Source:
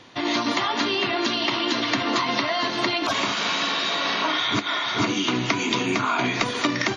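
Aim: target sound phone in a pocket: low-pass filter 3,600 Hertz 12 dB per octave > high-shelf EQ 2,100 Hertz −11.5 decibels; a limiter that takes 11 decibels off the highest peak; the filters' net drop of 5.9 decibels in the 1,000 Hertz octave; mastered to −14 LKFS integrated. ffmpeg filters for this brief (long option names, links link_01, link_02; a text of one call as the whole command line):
ffmpeg -i in.wav -af "equalizer=frequency=1000:width_type=o:gain=-4.5,alimiter=limit=-20dB:level=0:latency=1,lowpass=3600,highshelf=frequency=2100:gain=-11.5,volume=18.5dB" out.wav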